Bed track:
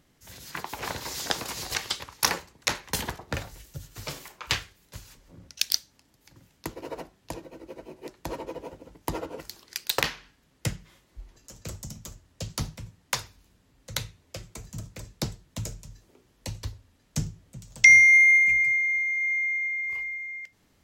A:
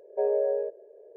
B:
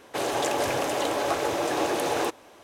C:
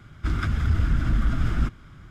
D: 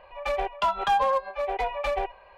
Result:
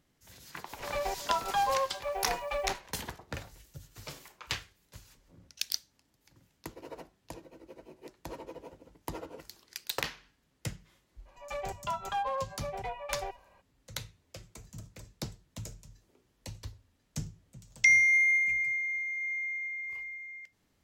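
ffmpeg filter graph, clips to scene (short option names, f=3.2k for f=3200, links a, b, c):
-filter_complex "[4:a]asplit=2[a][b];[0:a]volume=-8dB[c];[a]acrusher=bits=7:mix=0:aa=0.5,atrim=end=2.37,asetpts=PTS-STARTPTS,volume=-6dB,afade=t=in:d=0.004:c=hsin,afade=t=out:st=2.366:d=0.004:c=hsin,adelay=670[d];[b]atrim=end=2.37,asetpts=PTS-STARTPTS,volume=-10dB,afade=t=in:d=0.02,afade=t=out:st=2.35:d=0.02,adelay=11250[e];[c][d][e]amix=inputs=3:normalize=0"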